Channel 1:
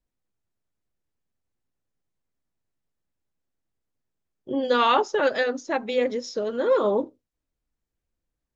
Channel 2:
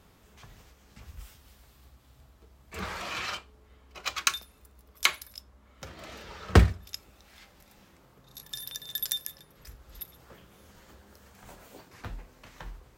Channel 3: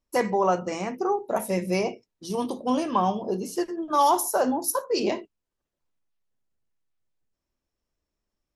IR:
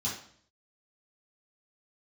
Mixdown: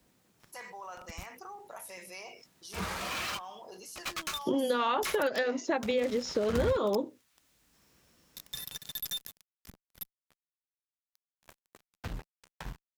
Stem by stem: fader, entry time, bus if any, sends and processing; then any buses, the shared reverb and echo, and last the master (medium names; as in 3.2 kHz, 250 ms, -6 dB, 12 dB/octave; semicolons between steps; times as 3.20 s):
-0.5 dB, 0.00 s, bus A, no send, three bands compressed up and down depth 70%
-18.5 dB, 0.00 s, no bus, no send, fuzz box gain 39 dB, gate -42 dBFS
-19.5 dB, 0.40 s, bus A, no send, high-pass 1.1 kHz 12 dB/octave; level flattener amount 70%
bus A: 0.0 dB, high-pass 50 Hz; compression 3:1, threshold -28 dBFS, peak gain reduction 8.5 dB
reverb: none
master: peaking EQ 180 Hz +4 dB 0.66 oct